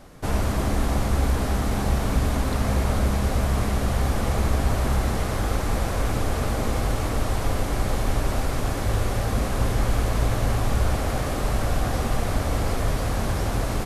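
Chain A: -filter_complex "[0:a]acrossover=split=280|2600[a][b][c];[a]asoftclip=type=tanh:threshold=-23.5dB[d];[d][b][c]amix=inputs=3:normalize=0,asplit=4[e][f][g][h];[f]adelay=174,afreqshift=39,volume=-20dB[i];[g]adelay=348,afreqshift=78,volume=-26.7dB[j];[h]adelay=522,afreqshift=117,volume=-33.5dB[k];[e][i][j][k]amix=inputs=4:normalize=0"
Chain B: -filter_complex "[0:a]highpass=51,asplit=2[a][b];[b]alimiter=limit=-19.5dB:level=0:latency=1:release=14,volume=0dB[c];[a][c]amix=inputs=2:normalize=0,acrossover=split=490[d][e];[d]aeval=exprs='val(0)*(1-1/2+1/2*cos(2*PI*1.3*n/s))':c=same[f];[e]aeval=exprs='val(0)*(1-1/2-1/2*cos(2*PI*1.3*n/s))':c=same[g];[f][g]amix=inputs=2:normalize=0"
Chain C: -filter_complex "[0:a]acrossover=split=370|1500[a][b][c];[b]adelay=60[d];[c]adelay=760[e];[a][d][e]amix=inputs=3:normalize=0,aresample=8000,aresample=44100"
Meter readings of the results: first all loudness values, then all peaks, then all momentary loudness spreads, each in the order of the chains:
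-27.5, -26.0, -26.0 LUFS; -15.0, -10.5, -10.5 dBFS; 2, 4, 3 LU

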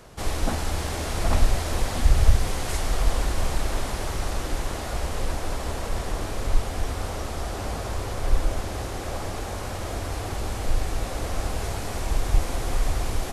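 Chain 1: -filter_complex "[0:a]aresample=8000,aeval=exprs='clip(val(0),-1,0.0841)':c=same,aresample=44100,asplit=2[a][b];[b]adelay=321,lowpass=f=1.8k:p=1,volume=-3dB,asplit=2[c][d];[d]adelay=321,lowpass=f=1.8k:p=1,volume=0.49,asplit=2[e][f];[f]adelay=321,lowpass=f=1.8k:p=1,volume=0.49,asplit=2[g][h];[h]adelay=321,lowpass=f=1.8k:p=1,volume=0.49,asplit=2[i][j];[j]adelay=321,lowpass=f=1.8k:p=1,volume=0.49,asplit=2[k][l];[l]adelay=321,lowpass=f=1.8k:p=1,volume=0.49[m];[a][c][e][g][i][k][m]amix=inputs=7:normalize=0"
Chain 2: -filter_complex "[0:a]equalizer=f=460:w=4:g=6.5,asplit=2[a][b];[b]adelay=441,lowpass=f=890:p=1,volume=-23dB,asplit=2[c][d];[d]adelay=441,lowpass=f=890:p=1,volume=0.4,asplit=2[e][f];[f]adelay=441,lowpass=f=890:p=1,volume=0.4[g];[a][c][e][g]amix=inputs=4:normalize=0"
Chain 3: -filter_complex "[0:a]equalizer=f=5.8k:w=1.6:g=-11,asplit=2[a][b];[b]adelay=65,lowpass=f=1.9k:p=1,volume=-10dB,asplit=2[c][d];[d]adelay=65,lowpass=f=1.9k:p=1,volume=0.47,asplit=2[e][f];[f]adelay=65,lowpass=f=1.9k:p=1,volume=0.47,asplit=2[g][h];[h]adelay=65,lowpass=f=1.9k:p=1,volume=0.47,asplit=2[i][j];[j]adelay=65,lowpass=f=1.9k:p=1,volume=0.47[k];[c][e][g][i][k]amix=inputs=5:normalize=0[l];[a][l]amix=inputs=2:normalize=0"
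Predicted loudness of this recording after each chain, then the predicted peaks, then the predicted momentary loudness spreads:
-28.5, -28.5, -28.5 LUFS; -6.5, -3.0, -3.0 dBFS; 5, 7, 7 LU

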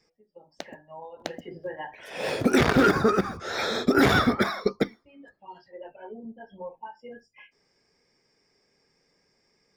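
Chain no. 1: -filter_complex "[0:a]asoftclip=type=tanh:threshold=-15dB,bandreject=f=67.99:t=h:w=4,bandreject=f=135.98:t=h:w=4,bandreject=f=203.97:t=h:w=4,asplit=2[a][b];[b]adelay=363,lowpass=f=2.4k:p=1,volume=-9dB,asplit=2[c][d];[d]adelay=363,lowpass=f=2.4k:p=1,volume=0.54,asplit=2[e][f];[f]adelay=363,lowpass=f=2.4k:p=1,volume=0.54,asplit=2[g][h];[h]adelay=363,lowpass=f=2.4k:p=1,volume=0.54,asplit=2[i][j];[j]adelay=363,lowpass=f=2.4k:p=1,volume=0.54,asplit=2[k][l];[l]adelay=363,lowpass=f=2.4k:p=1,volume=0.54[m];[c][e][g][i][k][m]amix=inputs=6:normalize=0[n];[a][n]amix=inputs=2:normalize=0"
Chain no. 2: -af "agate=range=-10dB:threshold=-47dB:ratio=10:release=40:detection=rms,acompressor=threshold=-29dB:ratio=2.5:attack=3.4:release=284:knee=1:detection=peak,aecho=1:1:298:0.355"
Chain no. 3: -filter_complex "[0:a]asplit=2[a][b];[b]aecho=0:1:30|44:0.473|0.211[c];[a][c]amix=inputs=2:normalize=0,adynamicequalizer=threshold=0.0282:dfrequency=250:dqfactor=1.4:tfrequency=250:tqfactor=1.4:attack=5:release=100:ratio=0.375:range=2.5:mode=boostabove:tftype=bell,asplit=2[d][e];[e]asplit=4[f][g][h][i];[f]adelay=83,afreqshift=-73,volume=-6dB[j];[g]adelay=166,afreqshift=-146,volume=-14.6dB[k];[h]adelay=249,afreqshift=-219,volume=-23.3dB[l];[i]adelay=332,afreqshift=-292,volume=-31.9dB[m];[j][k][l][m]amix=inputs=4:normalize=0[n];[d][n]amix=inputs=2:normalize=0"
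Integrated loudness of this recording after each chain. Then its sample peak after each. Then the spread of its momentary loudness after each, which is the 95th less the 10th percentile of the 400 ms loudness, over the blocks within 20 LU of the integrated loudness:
-26.5, -33.5, -19.5 LUFS; -13.5, -11.5, -4.0 dBFS; 21, 16, 23 LU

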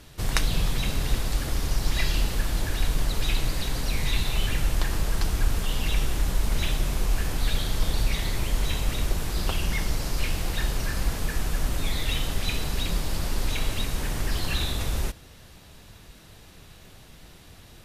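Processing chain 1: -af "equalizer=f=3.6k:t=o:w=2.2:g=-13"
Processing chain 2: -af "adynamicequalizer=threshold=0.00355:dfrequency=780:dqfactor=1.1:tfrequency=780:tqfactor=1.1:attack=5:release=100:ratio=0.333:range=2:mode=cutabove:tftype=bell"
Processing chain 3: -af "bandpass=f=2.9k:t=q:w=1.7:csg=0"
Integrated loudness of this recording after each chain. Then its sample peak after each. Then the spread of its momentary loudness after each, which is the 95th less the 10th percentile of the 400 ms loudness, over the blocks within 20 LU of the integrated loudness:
-30.5, -29.0, -37.0 LUFS; -8.0, -5.0, -8.5 dBFS; 3, 3, 23 LU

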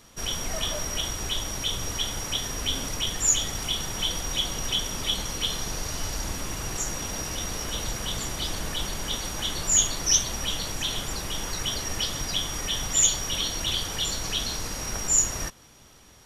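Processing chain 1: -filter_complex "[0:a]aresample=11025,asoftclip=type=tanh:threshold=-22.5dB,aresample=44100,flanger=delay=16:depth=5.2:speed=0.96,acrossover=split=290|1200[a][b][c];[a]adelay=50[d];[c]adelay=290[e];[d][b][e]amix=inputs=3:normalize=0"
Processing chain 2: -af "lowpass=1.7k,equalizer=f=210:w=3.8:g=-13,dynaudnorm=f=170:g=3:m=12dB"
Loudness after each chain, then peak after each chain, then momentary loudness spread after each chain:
-35.0, -24.5 LUFS; -19.5, -7.5 dBFS; 6, 2 LU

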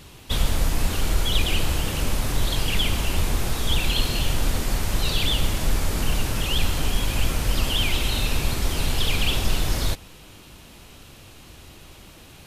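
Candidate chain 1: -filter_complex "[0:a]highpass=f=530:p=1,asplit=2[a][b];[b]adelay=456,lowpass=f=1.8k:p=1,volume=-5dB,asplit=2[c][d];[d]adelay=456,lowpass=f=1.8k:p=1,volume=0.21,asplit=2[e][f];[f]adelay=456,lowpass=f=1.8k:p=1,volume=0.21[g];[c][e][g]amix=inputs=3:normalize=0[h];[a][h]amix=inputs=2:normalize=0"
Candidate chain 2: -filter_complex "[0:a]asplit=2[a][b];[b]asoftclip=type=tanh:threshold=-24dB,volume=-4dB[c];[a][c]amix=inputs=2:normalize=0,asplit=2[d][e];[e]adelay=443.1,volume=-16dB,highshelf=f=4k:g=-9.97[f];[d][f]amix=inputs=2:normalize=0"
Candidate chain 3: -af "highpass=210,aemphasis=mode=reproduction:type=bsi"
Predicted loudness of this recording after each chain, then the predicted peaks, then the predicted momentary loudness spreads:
-27.0, -22.5, -28.0 LUFS; -12.5, -7.0, -13.5 dBFS; 8, 21, 22 LU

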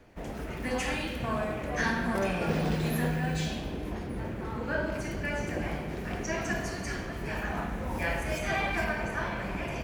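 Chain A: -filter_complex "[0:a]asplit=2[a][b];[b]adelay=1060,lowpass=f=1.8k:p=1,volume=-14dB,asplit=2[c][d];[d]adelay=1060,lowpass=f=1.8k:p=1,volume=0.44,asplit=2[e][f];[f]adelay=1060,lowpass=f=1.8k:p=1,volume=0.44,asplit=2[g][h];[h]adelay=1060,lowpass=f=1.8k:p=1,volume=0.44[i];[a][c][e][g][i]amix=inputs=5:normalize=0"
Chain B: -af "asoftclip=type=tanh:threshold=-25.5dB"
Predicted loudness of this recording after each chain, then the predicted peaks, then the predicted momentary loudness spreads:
-32.0, -34.0 LUFS; -16.0, -25.5 dBFS; 7, 5 LU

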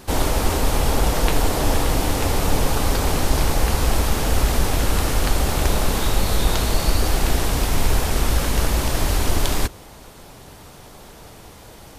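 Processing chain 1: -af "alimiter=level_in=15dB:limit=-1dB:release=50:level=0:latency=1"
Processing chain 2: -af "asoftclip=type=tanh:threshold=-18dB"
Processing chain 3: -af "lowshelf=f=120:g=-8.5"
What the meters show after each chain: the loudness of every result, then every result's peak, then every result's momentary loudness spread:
-12.0, -25.5, -23.5 LUFS; -1.0, -18.0, -4.0 dBFS; 16, 17, 20 LU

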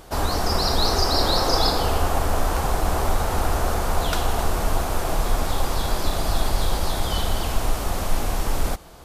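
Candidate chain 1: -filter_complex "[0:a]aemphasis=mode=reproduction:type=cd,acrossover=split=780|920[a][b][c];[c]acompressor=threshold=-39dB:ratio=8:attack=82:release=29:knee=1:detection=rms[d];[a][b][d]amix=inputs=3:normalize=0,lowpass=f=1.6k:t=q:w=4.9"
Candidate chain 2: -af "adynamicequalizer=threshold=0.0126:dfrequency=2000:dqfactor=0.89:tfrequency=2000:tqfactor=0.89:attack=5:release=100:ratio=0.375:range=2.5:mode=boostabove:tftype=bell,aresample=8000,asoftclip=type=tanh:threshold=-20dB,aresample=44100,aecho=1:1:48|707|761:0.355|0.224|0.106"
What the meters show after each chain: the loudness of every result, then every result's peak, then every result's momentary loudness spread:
-23.0, -27.5 LUFS; -6.5, -15.0 dBFS; 4, 4 LU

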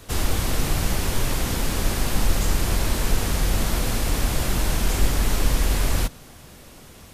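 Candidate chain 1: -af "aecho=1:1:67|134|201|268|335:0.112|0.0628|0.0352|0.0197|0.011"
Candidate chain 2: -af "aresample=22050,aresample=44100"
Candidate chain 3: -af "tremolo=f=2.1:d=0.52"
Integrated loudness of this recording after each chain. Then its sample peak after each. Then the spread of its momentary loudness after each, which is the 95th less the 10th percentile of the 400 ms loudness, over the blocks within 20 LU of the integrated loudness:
-24.5, -25.0, -27.0 LUFS; -5.5, -5.5, -8.5 dBFS; 2, 2, 2 LU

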